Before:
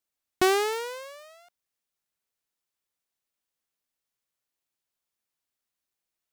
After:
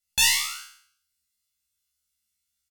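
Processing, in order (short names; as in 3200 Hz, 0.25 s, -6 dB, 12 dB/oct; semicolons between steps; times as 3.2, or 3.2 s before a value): passive tone stack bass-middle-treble 10-0-10; notches 60/120/180/240/300/360 Hz; comb 3.4 ms, depth 89%; in parallel at -6 dB: soft clip -21 dBFS, distortion -10 dB; on the sum: air absorption 87 m; on a send: flutter echo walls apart 5.7 m, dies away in 1.4 s; on the sum: speed mistake 33 rpm record played at 78 rpm; gain +6 dB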